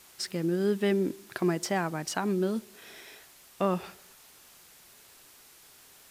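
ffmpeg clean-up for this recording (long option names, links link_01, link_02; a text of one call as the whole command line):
ffmpeg -i in.wav -af "adeclick=threshold=4,afwtdn=0.002" out.wav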